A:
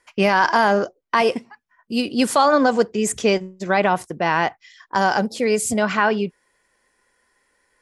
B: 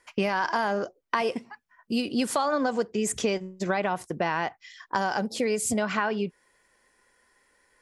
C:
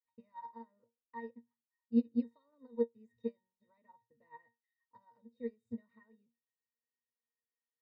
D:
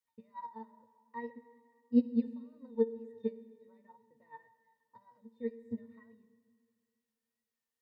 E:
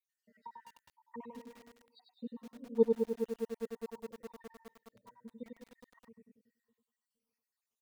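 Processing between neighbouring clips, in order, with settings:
downward compressor 4 to 1, threshold −24 dBFS, peak gain reduction 11 dB
resonances in every octave A#, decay 0.21 s; expander for the loud parts 2.5 to 1, over −44 dBFS; level +3 dB
tape wow and flutter 56 cents; convolution reverb RT60 2.2 s, pre-delay 51 ms, DRR 15 dB; level +3 dB
time-frequency cells dropped at random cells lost 73%; repeating echo 96 ms, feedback 21%, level −4.5 dB; feedback echo at a low word length 206 ms, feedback 80%, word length 9 bits, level −6.5 dB; level +3 dB

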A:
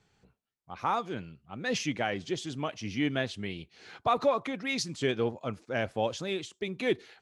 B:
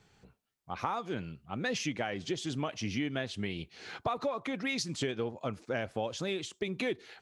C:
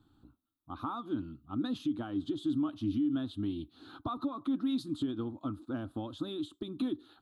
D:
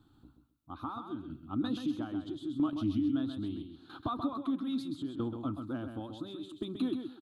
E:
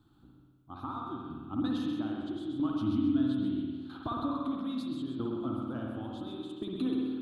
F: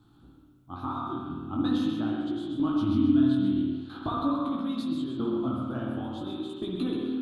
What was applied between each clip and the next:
downward compressor 6 to 1, threshold −35 dBFS, peak gain reduction 14 dB; level +4.5 dB
drawn EQ curve 110 Hz 0 dB, 180 Hz −9 dB, 300 Hz +13 dB, 430 Hz −16 dB, 870 Hz −8 dB, 1,300 Hz −1 dB, 2,100 Hz −30 dB, 3,700 Hz −3 dB, 5,700 Hz −26 dB, 11,000 Hz −4 dB; brickwall limiter −25.5 dBFS, peak gain reduction 9 dB; level +1 dB
shaped tremolo saw down 0.77 Hz, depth 70%; on a send: repeating echo 131 ms, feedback 23%, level −7 dB; on the sum: level +2.5 dB
spring reverb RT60 1.5 s, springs 54 ms, chirp 40 ms, DRR −0.5 dB; level −1.5 dB
chorus effect 0.44 Hz, delay 17 ms, depth 7.2 ms; level +8 dB; SBC 192 kbit/s 44,100 Hz

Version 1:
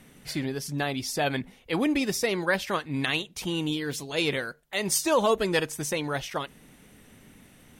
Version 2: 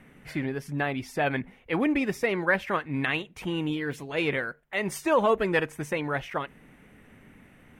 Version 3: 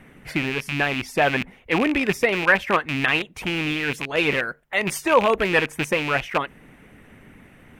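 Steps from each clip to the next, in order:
high shelf with overshoot 3,100 Hz −11.5 dB, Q 1.5
loose part that buzzes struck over −37 dBFS, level −21 dBFS; harmonic and percussive parts rebalanced percussive +6 dB; level +2 dB

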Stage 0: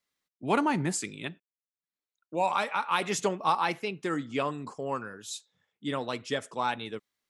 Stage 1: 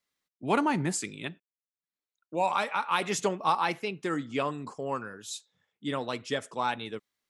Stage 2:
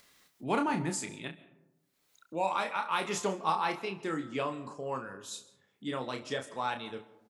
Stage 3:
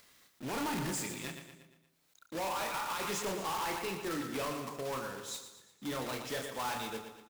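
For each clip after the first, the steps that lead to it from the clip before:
no processing that can be heard
upward compression, threshold −40 dBFS; on a send: ambience of single reflections 31 ms −6.5 dB, 68 ms −18 dB; on the sum: comb and all-pass reverb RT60 1 s, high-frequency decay 0.35×, pre-delay 95 ms, DRR 16.5 dB; level −4.5 dB
one scale factor per block 3 bits; repeating echo 117 ms, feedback 50%, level −11 dB; gain into a clipping stage and back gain 32.5 dB

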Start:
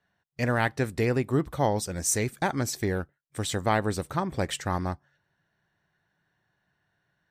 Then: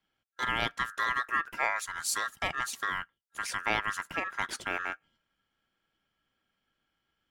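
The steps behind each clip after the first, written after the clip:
ring modulation 1,500 Hz
level −2.5 dB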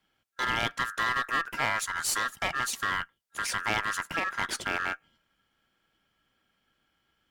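in parallel at 0 dB: brickwall limiter −25.5 dBFS, peak gain reduction 11.5 dB
on the sum: asymmetric clip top −26 dBFS

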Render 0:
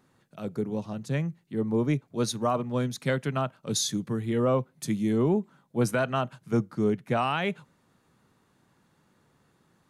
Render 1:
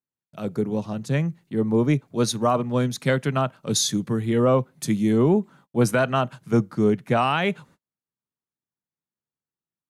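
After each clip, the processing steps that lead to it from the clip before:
noise gate −55 dBFS, range −39 dB
level +5.5 dB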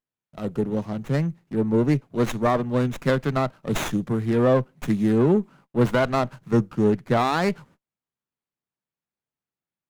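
windowed peak hold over 9 samples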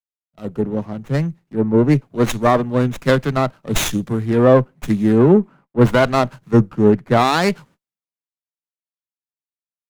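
multiband upward and downward expander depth 70%
level +6 dB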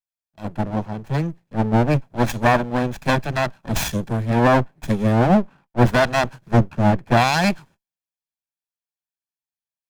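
lower of the sound and its delayed copy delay 1.2 ms
level −1 dB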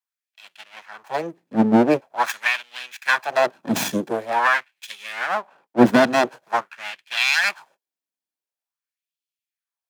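auto-filter high-pass sine 0.46 Hz 240–3,000 Hz

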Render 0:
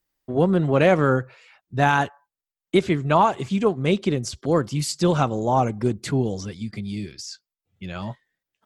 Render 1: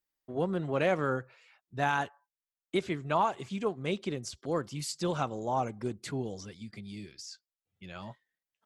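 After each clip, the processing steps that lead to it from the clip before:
low-shelf EQ 310 Hz −6 dB
level −9 dB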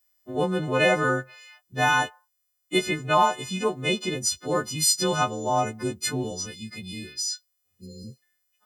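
every partial snapped to a pitch grid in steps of 3 semitones
healed spectral selection 0:07.76–0:08.20, 520–3,700 Hz before
level +6 dB

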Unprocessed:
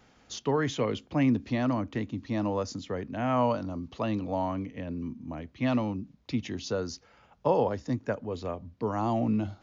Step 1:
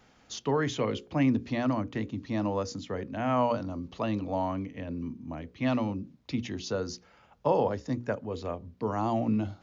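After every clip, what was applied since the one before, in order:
mains-hum notches 60/120/180/240/300/360/420/480/540 Hz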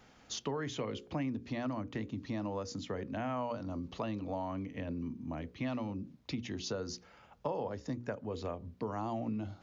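downward compressor 4 to 1, threshold −35 dBFS, peak gain reduction 13 dB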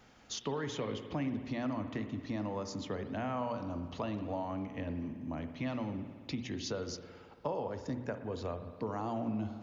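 spring reverb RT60 1.9 s, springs 56 ms, chirp 75 ms, DRR 8.5 dB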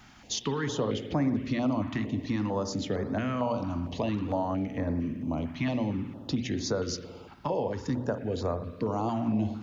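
notch on a step sequencer 4.4 Hz 490–2,900 Hz
level +8.5 dB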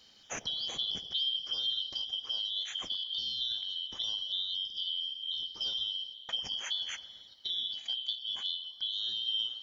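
band-splitting scrambler in four parts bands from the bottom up 3412
level −6 dB

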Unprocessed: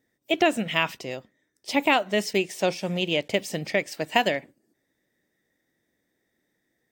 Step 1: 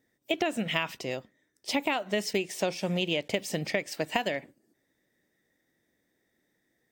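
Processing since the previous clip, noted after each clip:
downward compressor 10 to 1, threshold −24 dBFS, peak gain reduction 9.5 dB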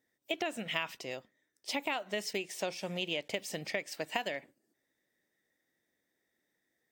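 low-shelf EQ 350 Hz −8 dB
level −4.5 dB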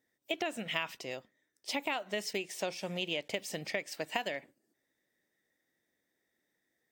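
no processing that can be heard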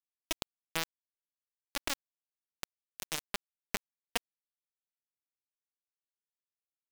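bit reduction 4 bits
level +1 dB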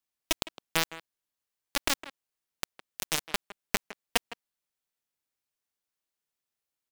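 far-end echo of a speakerphone 160 ms, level −12 dB
level +7 dB

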